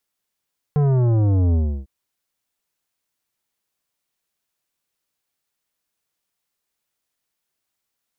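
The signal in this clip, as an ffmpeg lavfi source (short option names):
-f lavfi -i "aevalsrc='0.168*clip((1.1-t)/0.32,0,1)*tanh(3.98*sin(2*PI*150*1.1/log(65/150)*(exp(log(65/150)*t/1.1)-1)))/tanh(3.98)':d=1.1:s=44100"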